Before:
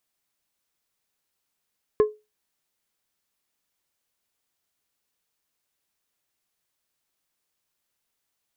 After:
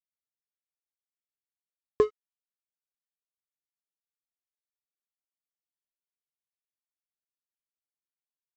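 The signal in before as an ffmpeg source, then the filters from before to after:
-f lavfi -i "aevalsrc='0.282*pow(10,-3*t/0.24)*sin(2*PI*425*t)+0.0708*pow(10,-3*t/0.126)*sin(2*PI*1062.5*t)+0.0178*pow(10,-3*t/0.091)*sin(2*PI*1700*t)+0.00447*pow(10,-3*t/0.078)*sin(2*PI*2125*t)+0.00112*pow(10,-3*t/0.065)*sin(2*PI*2762.5*t)':d=0.89:s=44100"
-af "equalizer=f=73:w=5.3:g=4.5,aresample=16000,aeval=exprs='sgn(val(0))*max(abs(val(0))-0.0133,0)':c=same,aresample=44100"

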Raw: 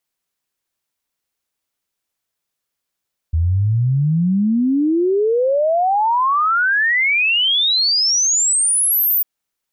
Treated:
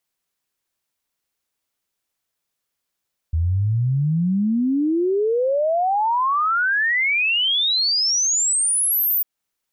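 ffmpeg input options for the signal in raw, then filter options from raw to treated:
-f lavfi -i "aevalsrc='0.224*clip(min(t,5.9-t)/0.01,0,1)*sin(2*PI*78*5.9/log(15000/78)*(exp(log(15000/78)*t/5.9)-1))':d=5.9:s=44100"
-af "alimiter=limit=0.15:level=0:latency=1:release=233"

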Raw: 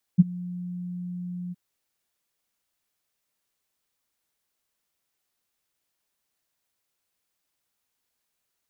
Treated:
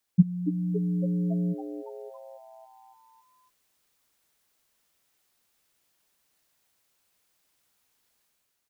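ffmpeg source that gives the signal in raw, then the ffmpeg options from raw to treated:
-f lavfi -i "aevalsrc='0.398*sin(2*PI*178*t)':d=1.367:s=44100,afade=t=in:d=0.021,afade=t=out:st=0.021:d=0.025:silence=0.0708,afade=t=out:st=1.34:d=0.027"
-filter_complex "[0:a]dynaudnorm=f=130:g=7:m=2.24,asplit=2[s0][s1];[s1]asplit=7[s2][s3][s4][s5][s6][s7][s8];[s2]adelay=279,afreqshift=120,volume=0.266[s9];[s3]adelay=558,afreqshift=240,volume=0.16[s10];[s4]adelay=837,afreqshift=360,volume=0.0955[s11];[s5]adelay=1116,afreqshift=480,volume=0.0575[s12];[s6]adelay=1395,afreqshift=600,volume=0.0347[s13];[s7]adelay=1674,afreqshift=720,volume=0.0207[s14];[s8]adelay=1953,afreqshift=840,volume=0.0124[s15];[s9][s10][s11][s12][s13][s14][s15]amix=inputs=7:normalize=0[s16];[s0][s16]amix=inputs=2:normalize=0"

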